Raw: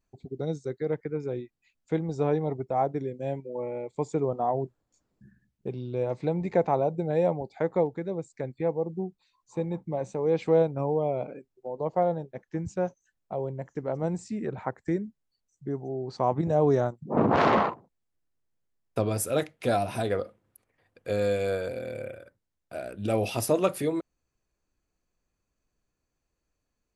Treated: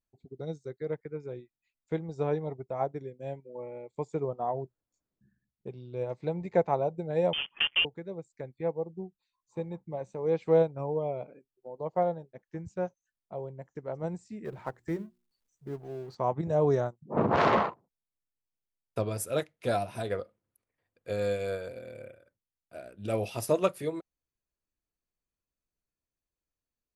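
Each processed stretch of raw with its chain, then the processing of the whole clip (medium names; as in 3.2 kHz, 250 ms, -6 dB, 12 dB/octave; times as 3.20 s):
7.33–7.85 s: block-companded coder 3-bit + frequency inversion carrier 3.3 kHz + three bands compressed up and down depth 70%
14.45–16.15 s: companding laws mixed up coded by mu + hum notches 60/120/180/240/300/360 Hz
whole clip: band-stop 770 Hz, Q 21; dynamic bell 270 Hz, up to -5 dB, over -42 dBFS, Q 2.6; upward expansion 1.5:1, over -45 dBFS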